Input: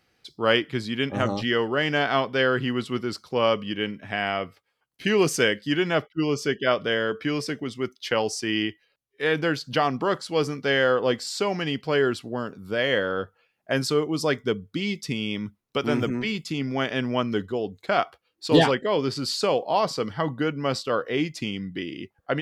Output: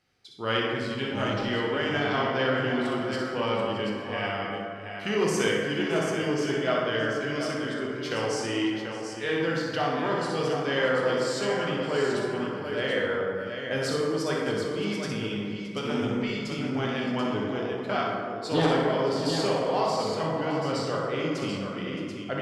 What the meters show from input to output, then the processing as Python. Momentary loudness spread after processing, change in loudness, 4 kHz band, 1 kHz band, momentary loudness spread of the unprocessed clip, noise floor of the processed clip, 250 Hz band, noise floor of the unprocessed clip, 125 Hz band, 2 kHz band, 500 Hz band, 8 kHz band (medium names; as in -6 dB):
6 LU, -2.5 dB, -4.0 dB, -2.0 dB, 9 LU, -36 dBFS, -2.0 dB, -73 dBFS, -2.0 dB, -3.0 dB, -2.0 dB, -3.0 dB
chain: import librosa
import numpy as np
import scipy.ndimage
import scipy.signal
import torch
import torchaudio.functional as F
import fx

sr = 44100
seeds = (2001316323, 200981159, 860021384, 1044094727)

y = scipy.signal.sosfilt(scipy.signal.butter(2, 9400.0, 'lowpass', fs=sr, output='sos'), x)
y = fx.high_shelf(y, sr, hz=6400.0, db=5.0)
y = fx.echo_multitap(y, sr, ms=(62, 619, 735), db=(-6.0, -16.0, -7.0))
y = fx.rev_plate(y, sr, seeds[0], rt60_s=2.2, hf_ratio=0.4, predelay_ms=0, drr_db=-1.5)
y = fx.transformer_sat(y, sr, knee_hz=750.0)
y = y * librosa.db_to_amplitude(-8.0)